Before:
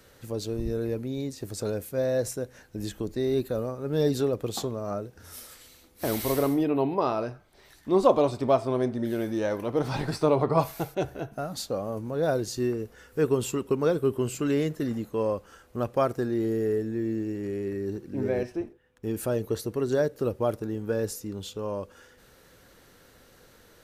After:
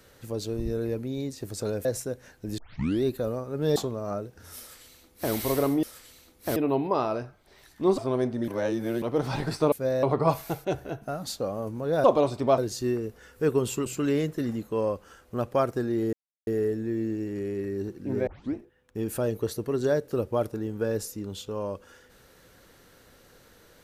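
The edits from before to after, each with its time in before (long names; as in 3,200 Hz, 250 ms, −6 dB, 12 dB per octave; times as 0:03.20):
0:01.85–0:02.16: move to 0:10.33
0:02.89: tape start 0.45 s
0:04.07–0:04.56: remove
0:05.39–0:06.12: duplicate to 0:06.63
0:08.05–0:08.59: move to 0:12.34
0:09.09–0:09.63: reverse
0:13.62–0:14.28: remove
0:16.55: splice in silence 0.34 s
0:18.35: tape start 0.28 s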